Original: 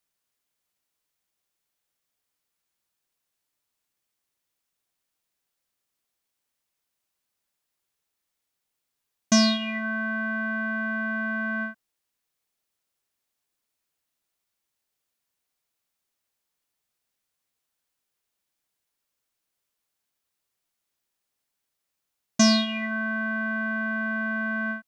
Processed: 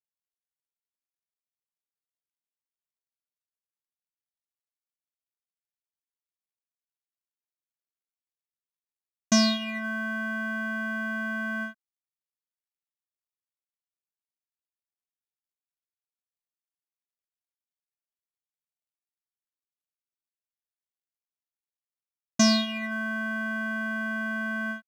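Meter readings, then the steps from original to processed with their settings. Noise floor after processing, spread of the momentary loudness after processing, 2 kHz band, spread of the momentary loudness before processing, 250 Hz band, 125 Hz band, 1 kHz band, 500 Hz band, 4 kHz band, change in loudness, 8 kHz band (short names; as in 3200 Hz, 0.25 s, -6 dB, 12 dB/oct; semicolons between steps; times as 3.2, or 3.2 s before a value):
under -85 dBFS, 9 LU, -2.5 dB, 8 LU, -2.0 dB, -2.0 dB, -2.5 dB, -2.0 dB, -2.0 dB, -2.0 dB, -1.5 dB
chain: G.711 law mismatch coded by A; gain -1.5 dB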